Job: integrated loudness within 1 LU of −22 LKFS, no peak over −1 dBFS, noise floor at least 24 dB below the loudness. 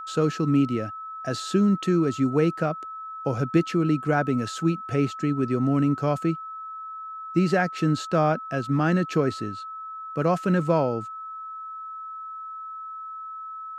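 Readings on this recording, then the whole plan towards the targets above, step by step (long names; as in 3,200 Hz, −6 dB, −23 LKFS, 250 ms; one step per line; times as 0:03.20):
interfering tone 1,300 Hz; level of the tone −34 dBFS; integrated loudness −24.5 LKFS; sample peak −8.0 dBFS; target loudness −22.0 LKFS
→ notch filter 1,300 Hz, Q 30
level +2.5 dB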